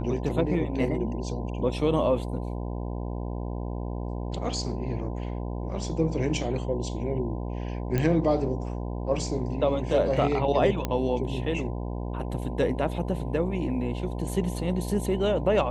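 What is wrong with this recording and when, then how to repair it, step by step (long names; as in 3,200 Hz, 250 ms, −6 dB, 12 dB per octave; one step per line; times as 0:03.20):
mains buzz 60 Hz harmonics 17 −32 dBFS
0:07.98: click −14 dBFS
0:10.85: click −13 dBFS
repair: click removal
hum removal 60 Hz, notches 17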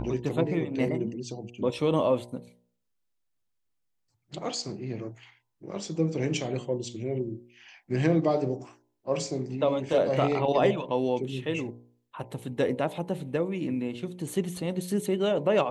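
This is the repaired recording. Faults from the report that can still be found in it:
none of them is left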